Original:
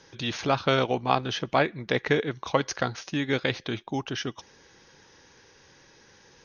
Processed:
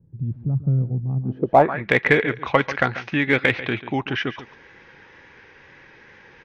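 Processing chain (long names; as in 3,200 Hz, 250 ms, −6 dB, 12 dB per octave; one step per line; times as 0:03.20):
tape wow and flutter 27 cents
single-tap delay 141 ms −14.5 dB
low-pass filter sweep 140 Hz → 2,200 Hz, 0:01.19–0:01.81
in parallel at −10 dB: gain into a clipping stage and back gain 16.5 dB
on the sum: level +3 dB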